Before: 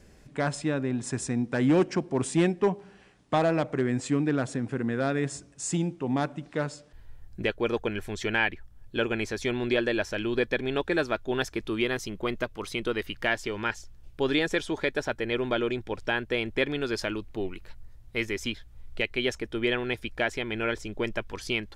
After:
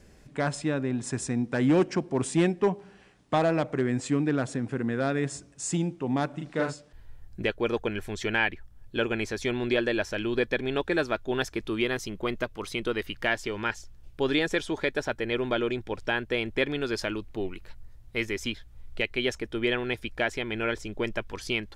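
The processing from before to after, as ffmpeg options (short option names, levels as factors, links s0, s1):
-filter_complex "[0:a]asettb=1/sr,asplit=3[s0][s1][s2];[s0]atrim=end=6.304[s3];[s1]atrim=start=6.3:end=6.73,asetpts=PTS-STARTPTS,afade=t=in:d=0.004:c=qsin,afade=t=out:st=0.426:d=0.004:c=qsin,asplit=2[s4][s5];[s5]adelay=37,volume=0.794[s6];[s4][s6]amix=inputs=2:normalize=0,atrim=end_sample=18963[s7];[s2]atrim=start=6.726[s8];[s3][s7]acrossfade=d=0.004:c1=hsin:c2=qsin[s9];[s9][s8]acrossfade=d=0.004:c1=qsin:c2=hsin"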